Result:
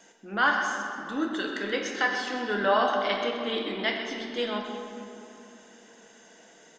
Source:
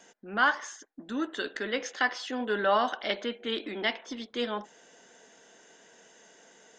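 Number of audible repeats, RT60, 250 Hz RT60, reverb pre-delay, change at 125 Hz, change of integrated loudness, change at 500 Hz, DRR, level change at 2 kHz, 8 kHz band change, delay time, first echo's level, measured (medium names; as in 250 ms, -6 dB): 1, 2.9 s, 3.7 s, 6 ms, no reading, +2.5 dB, +3.0 dB, 0.5 dB, +2.5 dB, +1.5 dB, 129 ms, -10.5 dB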